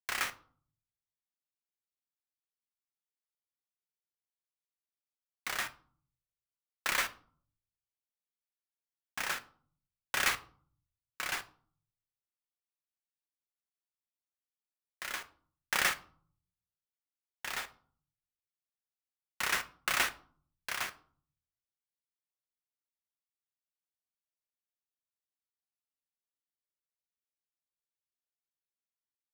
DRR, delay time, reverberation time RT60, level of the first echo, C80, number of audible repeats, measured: 10.0 dB, none, 0.50 s, none, 22.0 dB, none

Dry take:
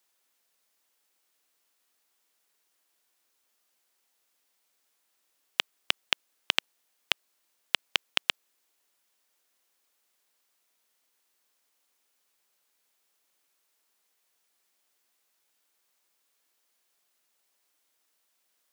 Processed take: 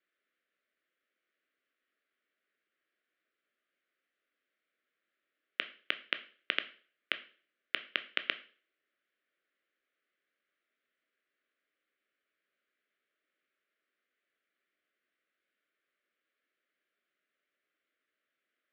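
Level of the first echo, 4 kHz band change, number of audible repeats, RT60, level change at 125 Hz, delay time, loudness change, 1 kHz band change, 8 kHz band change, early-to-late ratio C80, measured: none, -8.5 dB, none, 0.45 s, n/a, none, -6.5 dB, -7.5 dB, under -30 dB, 20.0 dB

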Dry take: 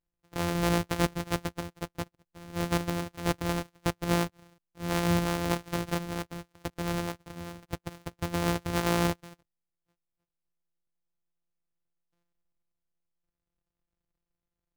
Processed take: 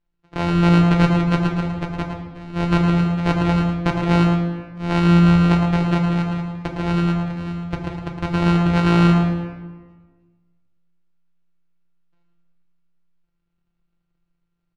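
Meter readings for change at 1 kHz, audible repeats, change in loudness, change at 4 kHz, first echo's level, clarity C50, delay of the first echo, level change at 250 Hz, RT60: +9.5 dB, 1, +12.5 dB, +6.0 dB, -8.0 dB, 3.5 dB, 0.111 s, +15.0 dB, 1.5 s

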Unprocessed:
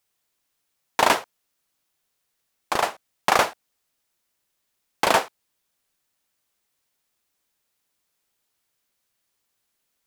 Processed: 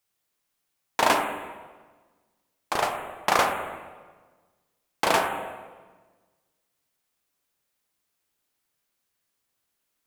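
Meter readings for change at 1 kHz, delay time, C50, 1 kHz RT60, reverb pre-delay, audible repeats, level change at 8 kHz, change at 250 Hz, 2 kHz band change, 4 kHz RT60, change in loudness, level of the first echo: -1.5 dB, none, 5.5 dB, 1.3 s, 16 ms, none, -3.0 dB, -0.5 dB, -2.0 dB, 1.1 s, -3.0 dB, none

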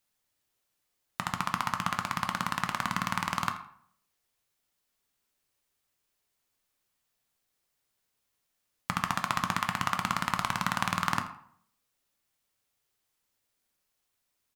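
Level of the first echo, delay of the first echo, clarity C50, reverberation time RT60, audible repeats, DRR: -16.0 dB, 82 ms, 10.0 dB, 0.60 s, 1, 5.5 dB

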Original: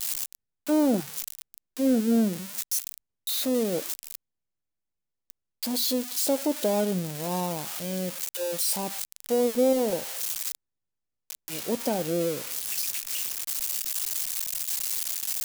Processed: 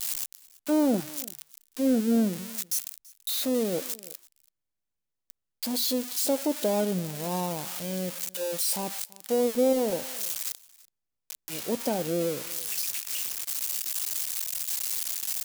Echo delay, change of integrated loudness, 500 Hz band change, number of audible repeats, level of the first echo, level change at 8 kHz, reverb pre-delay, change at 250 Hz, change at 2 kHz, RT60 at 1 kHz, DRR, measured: 0.333 s, -1.0 dB, -1.0 dB, 1, -23.0 dB, -1.0 dB, none, -1.0 dB, -1.0 dB, none, none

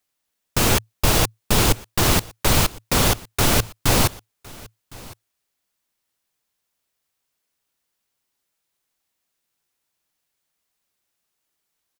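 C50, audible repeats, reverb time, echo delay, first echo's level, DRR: none, 1, none, 1.06 s, -22.5 dB, none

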